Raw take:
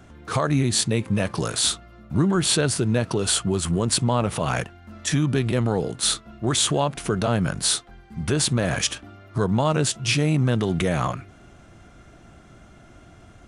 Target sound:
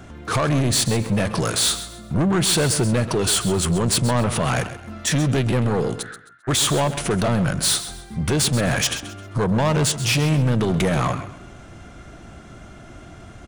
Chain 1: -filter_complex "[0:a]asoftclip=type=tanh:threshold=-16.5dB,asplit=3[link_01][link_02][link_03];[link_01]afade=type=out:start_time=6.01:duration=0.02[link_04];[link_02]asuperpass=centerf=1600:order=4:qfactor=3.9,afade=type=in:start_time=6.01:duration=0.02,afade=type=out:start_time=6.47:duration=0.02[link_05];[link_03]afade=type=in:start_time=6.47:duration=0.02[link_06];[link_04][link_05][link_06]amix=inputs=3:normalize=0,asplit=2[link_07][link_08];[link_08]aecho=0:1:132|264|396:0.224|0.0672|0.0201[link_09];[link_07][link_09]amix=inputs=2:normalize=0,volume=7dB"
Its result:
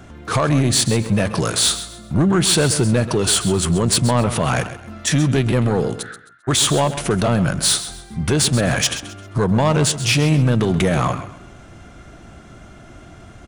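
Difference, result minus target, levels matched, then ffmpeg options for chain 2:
soft clipping: distortion −6 dB
-filter_complex "[0:a]asoftclip=type=tanh:threshold=-22.5dB,asplit=3[link_01][link_02][link_03];[link_01]afade=type=out:start_time=6.01:duration=0.02[link_04];[link_02]asuperpass=centerf=1600:order=4:qfactor=3.9,afade=type=in:start_time=6.01:duration=0.02,afade=type=out:start_time=6.47:duration=0.02[link_05];[link_03]afade=type=in:start_time=6.47:duration=0.02[link_06];[link_04][link_05][link_06]amix=inputs=3:normalize=0,asplit=2[link_07][link_08];[link_08]aecho=0:1:132|264|396:0.224|0.0672|0.0201[link_09];[link_07][link_09]amix=inputs=2:normalize=0,volume=7dB"

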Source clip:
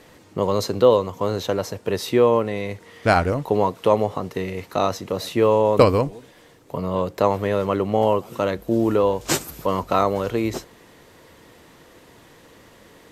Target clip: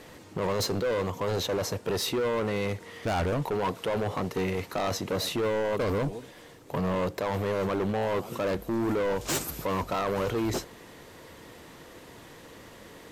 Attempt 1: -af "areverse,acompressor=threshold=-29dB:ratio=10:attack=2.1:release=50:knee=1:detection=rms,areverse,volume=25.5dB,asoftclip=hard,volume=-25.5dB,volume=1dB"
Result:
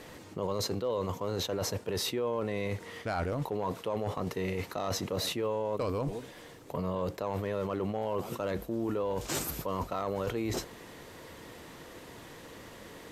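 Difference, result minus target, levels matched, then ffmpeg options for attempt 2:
downward compressor: peak gain reduction +9 dB
-af "areverse,acompressor=threshold=-19dB:ratio=10:attack=2.1:release=50:knee=1:detection=rms,areverse,volume=25.5dB,asoftclip=hard,volume=-25.5dB,volume=1dB"

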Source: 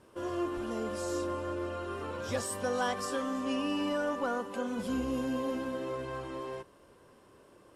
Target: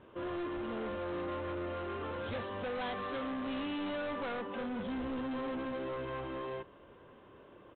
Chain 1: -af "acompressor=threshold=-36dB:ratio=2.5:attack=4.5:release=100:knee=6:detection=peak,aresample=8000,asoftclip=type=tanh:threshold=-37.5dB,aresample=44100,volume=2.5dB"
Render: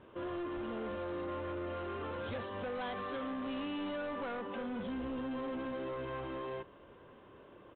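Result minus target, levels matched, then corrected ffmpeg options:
downward compressor: peak gain reduction +7 dB
-af "aresample=8000,asoftclip=type=tanh:threshold=-37.5dB,aresample=44100,volume=2.5dB"

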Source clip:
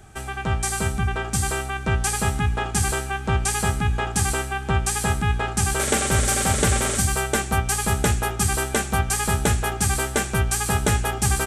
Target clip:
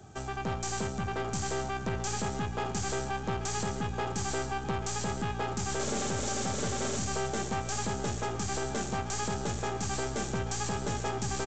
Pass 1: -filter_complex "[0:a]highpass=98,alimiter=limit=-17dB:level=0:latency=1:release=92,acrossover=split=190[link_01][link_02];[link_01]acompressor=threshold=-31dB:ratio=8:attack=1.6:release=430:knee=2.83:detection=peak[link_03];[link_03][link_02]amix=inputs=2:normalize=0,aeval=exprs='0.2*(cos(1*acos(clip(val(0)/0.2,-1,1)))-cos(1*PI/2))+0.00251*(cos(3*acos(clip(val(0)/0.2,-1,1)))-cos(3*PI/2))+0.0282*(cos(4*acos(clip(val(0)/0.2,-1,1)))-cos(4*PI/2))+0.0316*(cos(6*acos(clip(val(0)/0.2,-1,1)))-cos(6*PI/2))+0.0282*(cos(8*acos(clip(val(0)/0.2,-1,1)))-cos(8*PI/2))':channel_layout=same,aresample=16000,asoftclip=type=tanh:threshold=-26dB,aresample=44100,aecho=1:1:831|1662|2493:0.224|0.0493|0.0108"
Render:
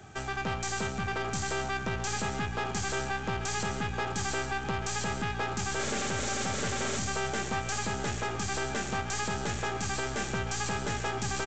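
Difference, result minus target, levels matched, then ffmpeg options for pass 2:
2,000 Hz band +5.0 dB
-filter_complex "[0:a]highpass=98,equalizer=frequency=2100:width_type=o:width=1.6:gain=-10,alimiter=limit=-17dB:level=0:latency=1:release=92,acrossover=split=190[link_01][link_02];[link_01]acompressor=threshold=-31dB:ratio=8:attack=1.6:release=430:knee=2.83:detection=peak[link_03];[link_03][link_02]amix=inputs=2:normalize=0,aeval=exprs='0.2*(cos(1*acos(clip(val(0)/0.2,-1,1)))-cos(1*PI/2))+0.00251*(cos(3*acos(clip(val(0)/0.2,-1,1)))-cos(3*PI/2))+0.0282*(cos(4*acos(clip(val(0)/0.2,-1,1)))-cos(4*PI/2))+0.0316*(cos(6*acos(clip(val(0)/0.2,-1,1)))-cos(6*PI/2))+0.0282*(cos(8*acos(clip(val(0)/0.2,-1,1)))-cos(8*PI/2))':channel_layout=same,aresample=16000,asoftclip=type=tanh:threshold=-26dB,aresample=44100,aecho=1:1:831|1662|2493:0.224|0.0493|0.0108"

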